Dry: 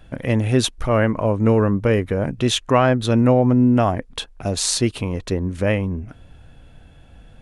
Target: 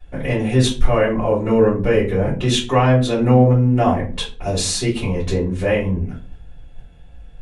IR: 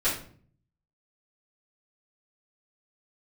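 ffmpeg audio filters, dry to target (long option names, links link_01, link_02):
-filter_complex "[0:a]asplit=2[link_01][link_02];[link_02]alimiter=limit=-11.5dB:level=0:latency=1:release=381,volume=0dB[link_03];[link_01][link_03]amix=inputs=2:normalize=0,agate=range=-6dB:threshold=-35dB:ratio=16:detection=peak[link_04];[1:a]atrim=start_sample=2205,asetrate=66150,aresample=44100[link_05];[link_04][link_05]afir=irnorm=-1:irlink=0,volume=-10.5dB"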